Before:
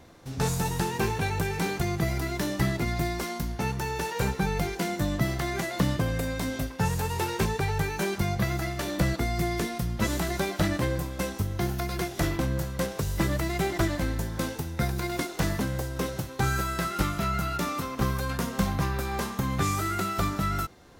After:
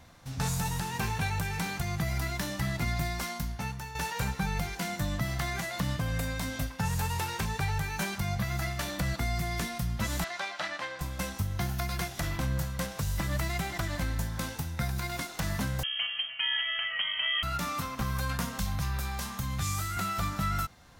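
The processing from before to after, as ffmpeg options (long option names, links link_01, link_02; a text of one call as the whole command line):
ffmpeg -i in.wav -filter_complex "[0:a]asettb=1/sr,asplit=3[link_01][link_02][link_03];[link_01]atrim=end=10.244[link_04];[link_02]atrim=start=10.24:end=11.01,asetpts=PTS-STARTPTS,afade=type=in:duration=0.004:curve=qsin,afade=type=out:start_time=0.766:duration=0.004:curve=qsin,highpass=620,lowpass=4600[link_05];[link_03]atrim=start=11.006[link_06];[link_04][link_05]acrossfade=duration=0.004:curve1=hsin:curve2=qsin[link_07];[link_07][link_06]acrossfade=duration=0.004:curve1=qsin:curve2=hsin,asettb=1/sr,asplit=3[link_08][link_09][link_10];[link_08]atrim=end=15.834[link_11];[link_09]atrim=start=15.83:end=17.43,asetpts=PTS-STARTPTS,afade=type=in:duration=0.004:curve=qsin,afade=type=out:start_time=1.596:duration=0.004:curve=qsin,lowpass=frequency=2800:width_type=q:width=0.5098,lowpass=frequency=2800:width_type=q:width=0.6013,lowpass=frequency=2800:width_type=q:width=0.9,lowpass=frequency=2800:width_type=q:width=2.563,afreqshift=-3300[link_12];[link_10]atrim=start=17.426[link_13];[link_11][link_12]acrossfade=duration=0.004:curve1=hsin:curve2=qsin[link_14];[link_14][link_13]acrossfade=duration=0.004:curve1=qsin:curve2=hsin,asettb=1/sr,asplit=3[link_15][link_16][link_17];[link_15]atrim=end=18.584[link_18];[link_16]atrim=start=18.58:end=19.97,asetpts=PTS-STARTPTS,afade=type=in:duration=0.004:curve=qsin,afade=type=out:start_time=1.386:duration=0.004:curve=qsin,acrossover=split=120|3000[link_19][link_20][link_21];[link_20]acompressor=threshold=-33dB:ratio=6:attack=3.2:release=140:knee=2.83:detection=peak[link_22];[link_19][link_22][link_21]amix=inputs=3:normalize=0[link_23];[link_17]atrim=start=19.966[link_24];[link_18][link_23]acrossfade=duration=0.004:curve1=hsin:curve2=qsin[link_25];[link_25][link_24]acrossfade=duration=0.004:curve1=qsin:curve2=hsin,asplit=2[link_26][link_27];[link_26]atrim=end=3.95,asetpts=PTS-STARTPTS,afade=type=out:start_time=3.29:duration=0.66:silence=0.316228[link_28];[link_27]atrim=start=3.95,asetpts=PTS-STARTPTS,afade=type=in:duration=0.004:curve=hsin:silence=0.316228[link_29];[link_28][link_29]concat=n=2:v=0:a=1,equalizer=frequency=380:width=1.5:gain=-13.5,alimiter=limit=-20dB:level=0:latency=1:release=161" out.wav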